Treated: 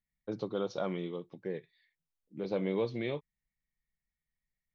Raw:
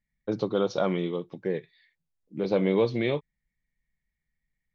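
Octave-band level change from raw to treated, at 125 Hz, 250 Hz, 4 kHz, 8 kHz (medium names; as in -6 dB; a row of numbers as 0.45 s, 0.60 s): -8.5 dB, -8.5 dB, -8.5 dB, no reading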